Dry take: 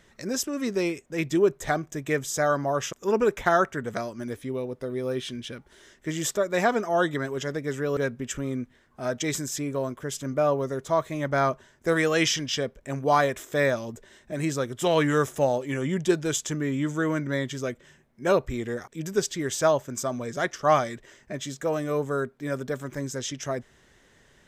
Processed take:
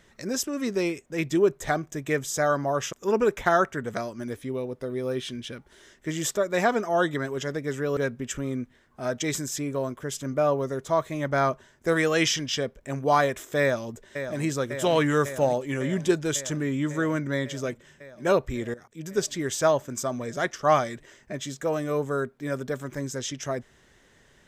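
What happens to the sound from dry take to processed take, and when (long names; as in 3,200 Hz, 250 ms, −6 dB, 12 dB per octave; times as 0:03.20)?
0:13.60–0:14.43: delay throw 550 ms, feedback 80%, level −9 dB
0:18.74–0:19.26: fade in, from −16.5 dB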